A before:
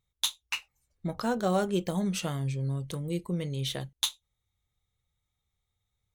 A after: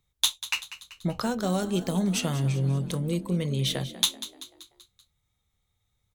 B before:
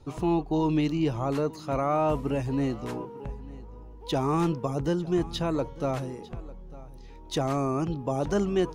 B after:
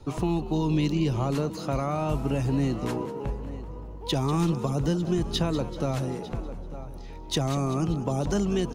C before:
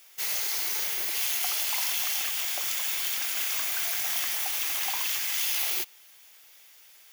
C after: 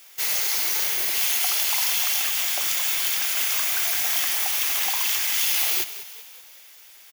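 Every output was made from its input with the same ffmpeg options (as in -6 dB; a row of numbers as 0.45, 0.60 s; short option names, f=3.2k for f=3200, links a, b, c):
-filter_complex "[0:a]acrossover=split=190|3000[a][b][c];[b]acompressor=threshold=-33dB:ratio=6[d];[a][d][c]amix=inputs=3:normalize=0,asplit=6[e][f][g][h][i][j];[f]adelay=192,afreqshift=44,volume=-14dB[k];[g]adelay=384,afreqshift=88,volume=-19.7dB[l];[h]adelay=576,afreqshift=132,volume=-25.4dB[m];[i]adelay=768,afreqshift=176,volume=-31dB[n];[j]adelay=960,afreqshift=220,volume=-36.7dB[o];[e][k][l][m][n][o]amix=inputs=6:normalize=0,volume=5.5dB"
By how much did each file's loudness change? +4.0, +0.5, +5.5 LU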